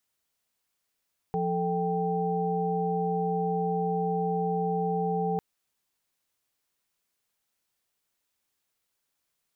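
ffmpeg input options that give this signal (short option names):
-f lavfi -i "aevalsrc='0.0335*(sin(2*PI*174.61*t)+sin(2*PI*440*t)+sin(2*PI*783.99*t))':d=4.05:s=44100"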